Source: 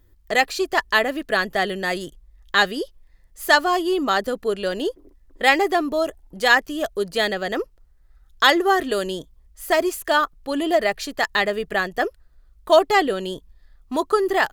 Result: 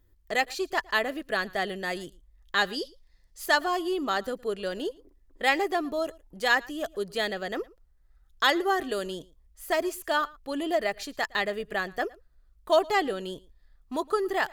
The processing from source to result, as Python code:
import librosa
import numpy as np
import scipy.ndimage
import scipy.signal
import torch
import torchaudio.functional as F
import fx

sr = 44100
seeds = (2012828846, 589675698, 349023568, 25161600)

y = fx.peak_eq(x, sr, hz=4800.0, db=11.0, octaves=1.1, at=(2.73, 3.46))
y = y + 10.0 ** (-23.5 / 20.0) * np.pad(y, (int(113 * sr / 1000.0), 0))[:len(y)]
y = y * librosa.db_to_amplitude(-7.5)